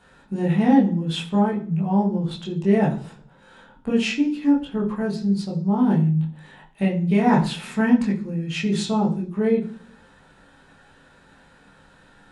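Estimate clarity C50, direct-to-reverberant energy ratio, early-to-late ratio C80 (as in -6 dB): 10.5 dB, -5.0 dB, 15.0 dB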